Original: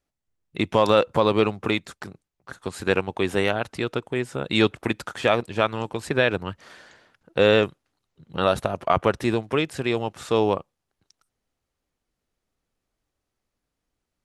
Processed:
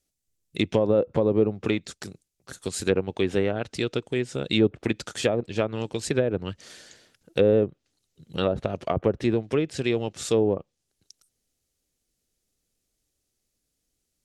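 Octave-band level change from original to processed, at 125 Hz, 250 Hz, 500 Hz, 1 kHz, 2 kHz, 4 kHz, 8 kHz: 0.0, 0.0, −1.5, −10.5, −7.5, −4.5, +5.0 decibels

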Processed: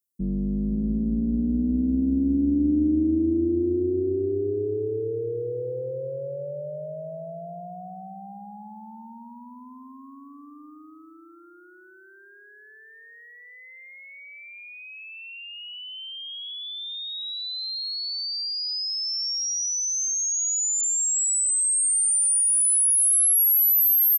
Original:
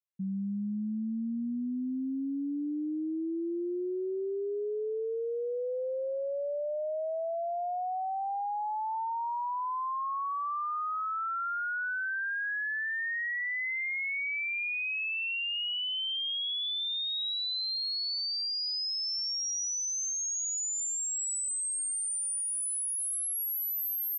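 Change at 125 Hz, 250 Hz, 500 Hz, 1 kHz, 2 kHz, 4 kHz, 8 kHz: can't be measured, +10.0 dB, +4.5 dB, −12.0 dB, −12.5 dB, +1.0 dB, +10.5 dB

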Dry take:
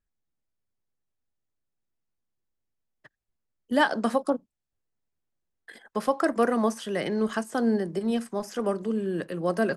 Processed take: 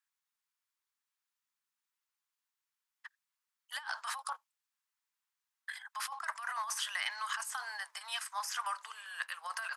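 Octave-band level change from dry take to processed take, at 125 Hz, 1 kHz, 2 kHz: below −40 dB, −8.5 dB, −5.0 dB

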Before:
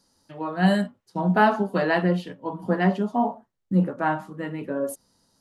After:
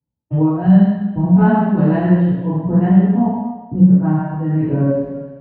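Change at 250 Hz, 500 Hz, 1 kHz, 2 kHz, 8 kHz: +12.0 dB, +3.5 dB, +1.0 dB, −4.0 dB, can't be measured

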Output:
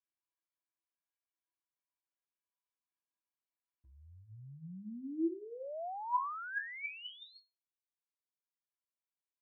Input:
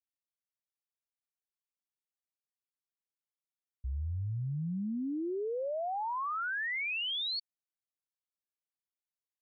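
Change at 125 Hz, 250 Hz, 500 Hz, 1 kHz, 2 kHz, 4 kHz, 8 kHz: −16.5 dB, −4.0 dB, −7.5 dB, −2.5 dB, −7.0 dB, −16.0 dB, can't be measured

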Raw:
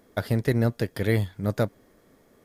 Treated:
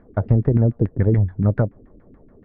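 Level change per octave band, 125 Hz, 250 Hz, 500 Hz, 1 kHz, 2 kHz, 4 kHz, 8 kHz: +9.0 dB, +5.5 dB, +2.5 dB, +1.5 dB, −6.5 dB, below −25 dB, below −35 dB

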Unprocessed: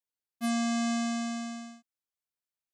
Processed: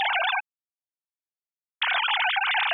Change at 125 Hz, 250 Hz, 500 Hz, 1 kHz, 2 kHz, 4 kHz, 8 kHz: can't be measured, below −35 dB, +3.0 dB, +12.5 dB, +18.0 dB, +15.5 dB, below −30 dB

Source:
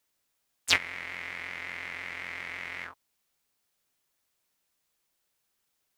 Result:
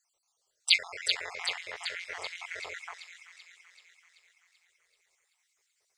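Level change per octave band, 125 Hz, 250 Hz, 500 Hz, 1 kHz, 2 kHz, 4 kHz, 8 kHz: below −10 dB, below −10 dB, +1.0 dB, −2.0 dB, −1.5 dB, +4.5 dB, 0.0 dB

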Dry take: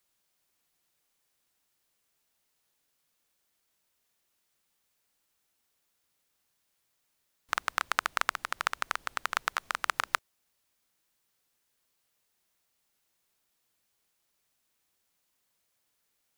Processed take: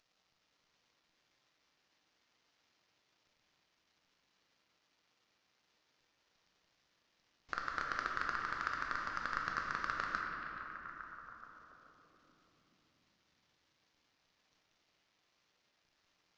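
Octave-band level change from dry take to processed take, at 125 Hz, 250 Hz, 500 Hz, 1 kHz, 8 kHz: can't be measured, +2.5 dB, −6.5 dB, −5.5 dB, −17.5 dB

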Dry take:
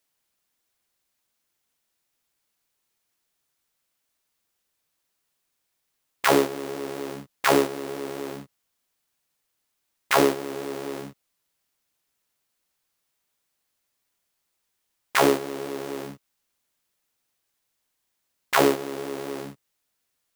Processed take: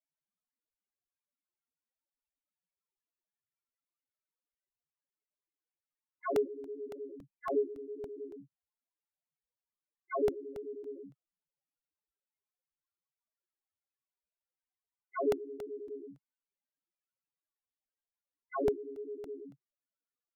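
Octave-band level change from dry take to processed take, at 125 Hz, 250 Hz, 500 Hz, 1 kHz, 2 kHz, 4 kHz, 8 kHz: −17.0 dB, −14.5 dB, −9.0 dB, −16.5 dB, −23.0 dB, below −25 dB, below −25 dB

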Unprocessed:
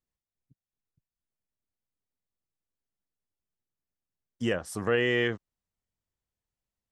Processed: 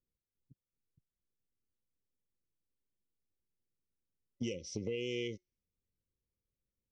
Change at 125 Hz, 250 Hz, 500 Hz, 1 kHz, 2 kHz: −9.0 dB, −9.0 dB, −11.0 dB, below −30 dB, −18.0 dB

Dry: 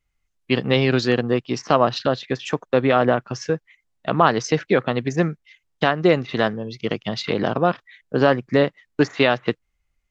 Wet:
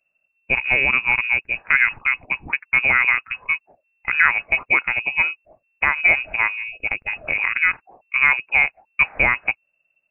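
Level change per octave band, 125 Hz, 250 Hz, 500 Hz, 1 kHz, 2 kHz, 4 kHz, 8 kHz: −16.0 dB, −19.5 dB, −17.5 dB, −4.5 dB, +11.5 dB, −7.0 dB, can't be measured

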